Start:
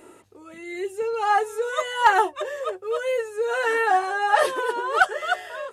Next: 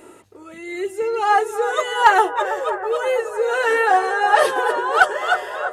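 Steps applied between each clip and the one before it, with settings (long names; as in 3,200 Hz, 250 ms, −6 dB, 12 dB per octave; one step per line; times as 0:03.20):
bucket-brigade delay 325 ms, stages 4,096, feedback 64%, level −10.5 dB
level +4 dB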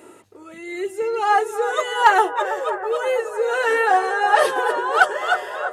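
high-pass filter 89 Hz
level −1 dB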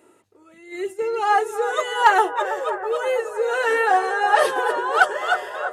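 noise gate −30 dBFS, range −9 dB
level −1 dB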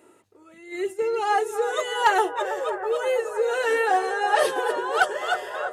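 dynamic equaliser 1,200 Hz, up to −6 dB, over −29 dBFS, Q 0.85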